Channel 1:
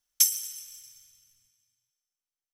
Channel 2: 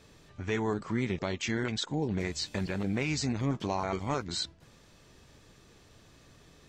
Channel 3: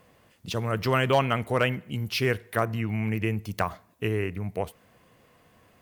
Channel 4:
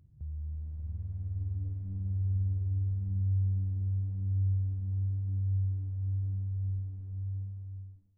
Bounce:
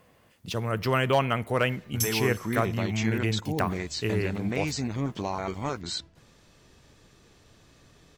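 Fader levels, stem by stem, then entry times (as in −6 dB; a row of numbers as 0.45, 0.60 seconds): −8.0 dB, +0.5 dB, −1.0 dB, muted; 1.80 s, 1.55 s, 0.00 s, muted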